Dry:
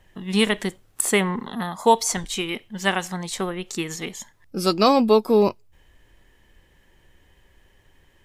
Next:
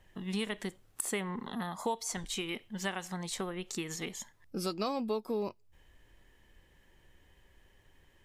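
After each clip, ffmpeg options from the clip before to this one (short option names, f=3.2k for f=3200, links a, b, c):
-af "acompressor=threshold=-28dB:ratio=3,volume=-6dB"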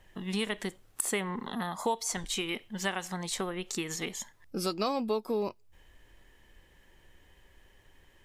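-af "equalizer=f=120:w=0.52:g=-3,volume=4dB"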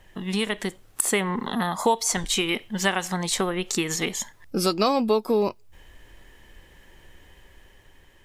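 -af "dynaudnorm=f=290:g=7:m=3dB,volume=6dB"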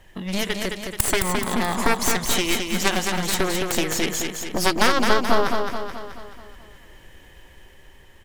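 -filter_complex "[0:a]aeval=exprs='0.473*(cos(1*acos(clip(val(0)/0.473,-1,1)))-cos(1*PI/2))+0.211*(cos(3*acos(clip(val(0)/0.473,-1,1)))-cos(3*PI/2))+0.168*(cos(4*acos(clip(val(0)/0.473,-1,1)))-cos(4*PI/2))+0.0473*(cos(7*acos(clip(val(0)/0.473,-1,1)))-cos(7*PI/2))':c=same,asplit=2[a][b];[b]aecho=0:1:215|430|645|860|1075|1290|1505:0.562|0.298|0.158|0.0837|0.0444|0.0235|0.0125[c];[a][c]amix=inputs=2:normalize=0,volume=2dB"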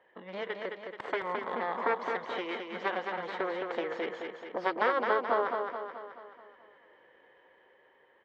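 -af "highpass=420,equalizer=f=490:t=q:w=4:g=9,equalizer=f=1k:t=q:w=4:g=3,equalizer=f=2.6k:t=q:w=4:g=-9,lowpass=f=2.7k:w=0.5412,lowpass=f=2.7k:w=1.3066,volume=-8.5dB"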